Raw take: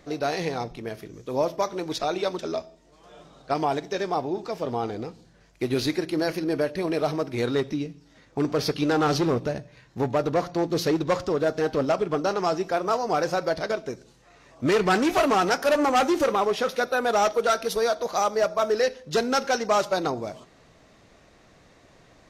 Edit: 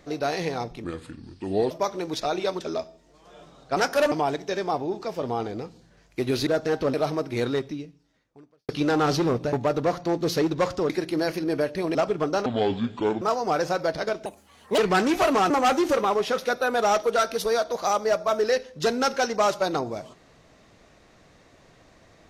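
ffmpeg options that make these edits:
-filter_complex "[0:a]asplit=16[a][b][c][d][e][f][g][h][i][j][k][l][m][n][o][p];[a]atrim=end=0.844[q];[b]atrim=start=0.84:end=1.49,asetpts=PTS-STARTPTS,asetrate=33075,aresample=44100[r];[c]atrim=start=1.486:end=3.552[s];[d]atrim=start=15.458:end=15.812[t];[e]atrim=start=3.548:end=5.902[u];[f]atrim=start=11.388:end=11.862[v];[g]atrim=start=6.948:end=8.7,asetpts=PTS-STARTPTS,afade=t=out:st=0.512:d=1.24:c=qua[w];[h]atrim=start=8.7:end=9.542,asetpts=PTS-STARTPTS,afade=t=in:d=0.004:c=hsin[x];[i]atrim=start=10.018:end=11.392[y];[j]atrim=start=5.898:end=6.952[z];[k]atrim=start=11.858:end=12.374[aa];[l]atrim=start=12.37:end=12.84,asetpts=PTS-STARTPTS,asetrate=27342,aresample=44100[ab];[m]atrim=start=12.836:end=13.884[ac];[n]atrim=start=13.88:end=14.74,asetpts=PTS-STARTPTS,asetrate=71883,aresample=44100,atrim=end_sample=23267,asetpts=PTS-STARTPTS[ad];[o]atrim=start=14.736:end=15.462[ae];[p]atrim=start=15.808[af];[q][r]acrossfade=d=0.004:c1=hsin:c2=hsin[ag];[ag][s]acrossfade=d=0.004:c1=hsin:c2=hsin[ah];[ah][t]acrossfade=d=0.004:c1=hsin:c2=hsin[ai];[ai][u]acrossfade=d=0.004:c1=hsin:c2=hsin[aj];[aj][v]acrossfade=d=0.004:c1=hsin:c2=hsin[ak];[w][x]concat=n=2:v=0:a=1[al];[ak][al]acrossfade=d=0.004:c1=hsin:c2=hsin[am];[am][y]acrossfade=d=0.004:c1=hsin:c2=hsin[an];[an][z]acrossfade=d=0.004:c1=hsin:c2=hsin[ao];[ao][aa]acrossfade=d=0.004:c1=hsin:c2=hsin[ap];[ap][ab]acrossfade=d=0.004:c1=hsin:c2=hsin[aq];[aq][ac]acrossfade=d=0.004:c1=hsin:c2=hsin[ar];[ar][ad]acrossfade=d=0.004:c1=hsin:c2=hsin[as];[as][ae]acrossfade=d=0.004:c1=hsin:c2=hsin[at];[at][af]acrossfade=d=0.004:c1=hsin:c2=hsin"

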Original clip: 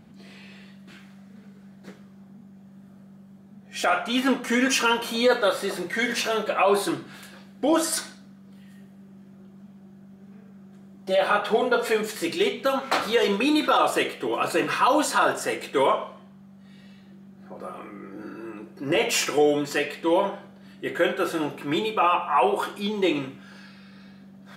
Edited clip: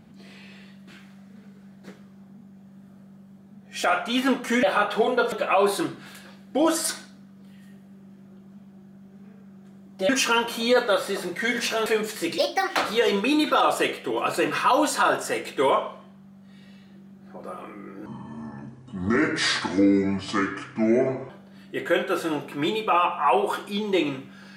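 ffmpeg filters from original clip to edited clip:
-filter_complex "[0:a]asplit=9[a][b][c][d][e][f][g][h][i];[a]atrim=end=4.632[j];[b]atrim=start=11.168:end=11.862[k];[c]atrim=start=6.398:end=11.172[l];[d]atrim=start=4.628:end=6.402[m];[e]atrim=start=11.858:end=12.384[n];[f]atrim=start=12.38:end=12.93,asetpts=PTS-STARTPTS,asetrate=62622,aresample=44100[o];[g]atrim=start=12.926:end=18.224[p];[h]atrim=start=18.22:end=20.39,asetpts=PTS-STARTPTS,asetrate=29547,aresample=44100,atrim=end_sample=142831,asetpts=PTS-STARTPTS[q];[i]atrim=start=20.386[r];[j][k]acrossfade=d=0.004:c1=hsin:c2=hsin[s];[s][l]acrossfade=d=0.004:c1=hsin:c2=hsin[t];[t][m]acrossfade=d=0.004:c1=hsin:c2=hsin[u];[u][n]acrossfade=d=0.004:c1=hsin:c2=hsin[v];[v][o]acrossfade=d=0.004:c1=hsin:c2=hsin[w];[w][p]acrossfade=d=0.004:c1=hsin:c2=hsin[x];[x][q]acrossfade=d=0.004:c1=hsin:c2=hsin[y];[y][r]acrossfade=d=0.004:c1=hsin:c2=hsin"

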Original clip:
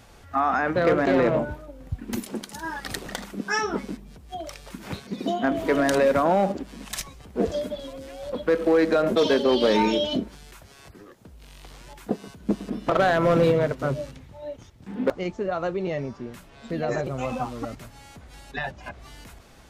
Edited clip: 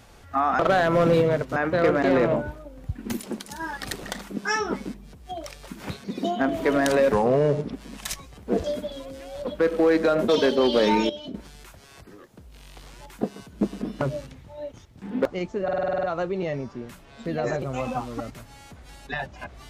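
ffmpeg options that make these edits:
-filter_complex "[0:a]asplit=16[a][b][c][d][e][f][g][h][i][j][k][l][m][n][o][p];[a]atrim=end=0.592[q];[b]atrim=start=12.888:end=13.862[r];[c]atrim=start=0.588:end=6.154[s];[d]atrim=start=6.15:end=6.61,asetpts=PTS-STARTPTS,asetrate=33075,aresample=44100[t];[e]atrim=start=6.606:end=9.972[u];[f]atrim=start=9.968:end=10.222,asetpts=PTS-STARTPTS,volume=-11.5dB[v];[g]atrim=start=10.218:end=12.892[w];[h]atrim=start=13.858:end=15.532[x];[i]atrim=start=15.478:end=15.532[y];[j]atrim=start=15.478:end=15.532[z];[k]atrim=start=15.478:end=15.532[aa];[l]atrim=start=15.478:end=15.532[ab];[m]atrim=start=15.478:end=15.532[ac];[n]atrim=start=15.478:end=15.532[ad];[o]atrim=start=15.478:end=15.532[ae];[p]atrim=start=15.478[af];[q][r]acrossfade=d=0.004:c1=hsin:c2=hsin[ag];[ag][s]acrossfade=d=0.004:c1=hsin:c2=hsin[ah];[ah][t]acrossfade=d=0.004:c1=hsin:c2=hsin[ai];[ai][u]acrossfade=d=0.004:c1=hsin:c2=hsin[aj];[aj][v]acrossfade=d=0.004:c1=hsin:c2=hsin[ak];[ak][w]acrossfade=d=0.004:c1=hsin:c2=hsin[al];[al][x]acrossfade=d=0.004:c1=hsin:c2=hsin[am];[am][y]acrossfade=d=0.004:c1=hsin:c2=hsin[an];[an][z]acrossfade=d=0.004:c1=hsin:c2=hsin[ao];[ao][aa]acrossfade=d=0.004:c1=hsin:c2=hsin[ap];[ap][ab]acrossfade=d=0.004:c1=hsin:c2=hsin[aq];[aq][ac]acrossfade=d=0.004:c1=hsin:c2=hsin[ar];[ar][ad]acrossfade=d=0.004:c1=hsin:c2=hsin[as];[as][ae]acrossfade=d=0.004:c1=hsin:c2=hsin[at];[at][af]acrossfade=d=0.004:c1=hsin:c2=hsin"

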